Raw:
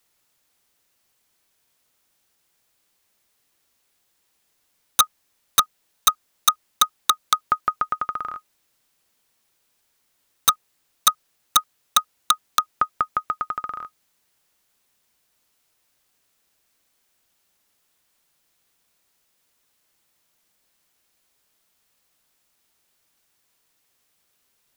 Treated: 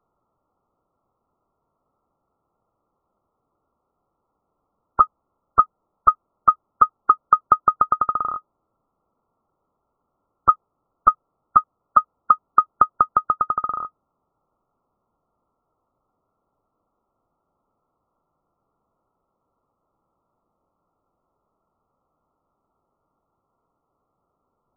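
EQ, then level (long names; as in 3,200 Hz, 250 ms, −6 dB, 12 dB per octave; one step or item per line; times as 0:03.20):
linear-phase brick-wall low-pass 1,400 Hz
+6.0 dB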